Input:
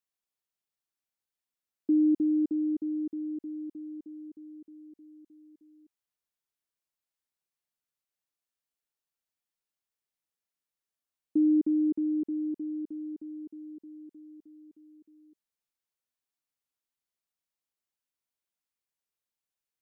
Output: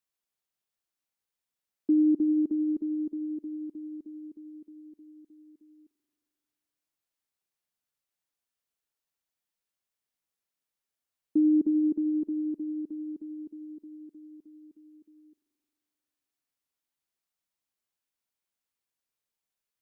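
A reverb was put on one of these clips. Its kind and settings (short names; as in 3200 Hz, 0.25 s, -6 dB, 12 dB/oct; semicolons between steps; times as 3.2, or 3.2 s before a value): spring tank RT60 2.6 s, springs 44 ms, chirp 50 ms, DRR 13 dB; gain +1.5 dB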